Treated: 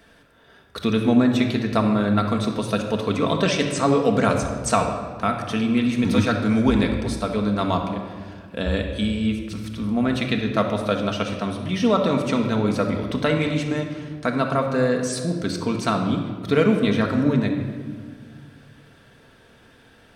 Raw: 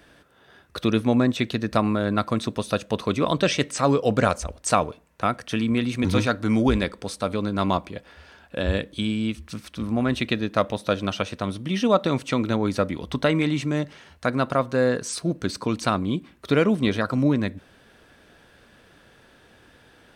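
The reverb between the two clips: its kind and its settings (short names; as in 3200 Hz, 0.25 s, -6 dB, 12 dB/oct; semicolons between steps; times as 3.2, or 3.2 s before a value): shoebox room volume 2200 m³, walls mixed, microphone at 1.6 m; gain -1 dB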